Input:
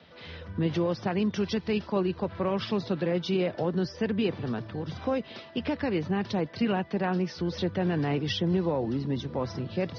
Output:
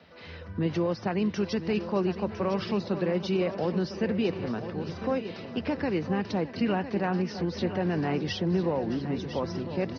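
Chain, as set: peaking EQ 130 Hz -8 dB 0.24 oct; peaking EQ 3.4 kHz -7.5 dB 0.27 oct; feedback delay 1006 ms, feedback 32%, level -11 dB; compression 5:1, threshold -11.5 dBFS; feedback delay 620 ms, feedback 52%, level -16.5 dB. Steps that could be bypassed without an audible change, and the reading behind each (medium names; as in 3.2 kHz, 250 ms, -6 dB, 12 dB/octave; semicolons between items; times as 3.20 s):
compression, threshold -11.5 dBFS: peak at its input -15.5 dBFS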